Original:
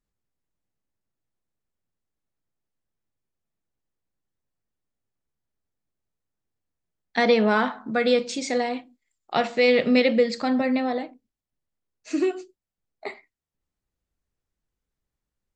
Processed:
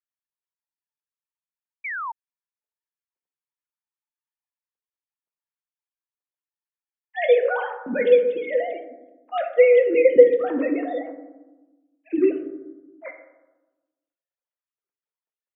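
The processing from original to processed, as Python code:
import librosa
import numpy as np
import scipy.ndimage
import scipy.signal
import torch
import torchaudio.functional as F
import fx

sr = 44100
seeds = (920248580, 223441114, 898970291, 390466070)

y = fx.sine_speech(x, sr)
y = fx.rev_fdn(y, sr, rt60_s=1.1, lf_ratio=1.5, hf_ratio=0.3, size_ms=33.0, drr_db=4.0)
y = fx.spec_paint(y, sr, seeds[0], shape='fall', start_s=1.84, length_s=0.28, low_hz=870.0, high_hz=2400.0, level_db=-31.0)
y = y * 10.0 ** (1.5 / 20.0)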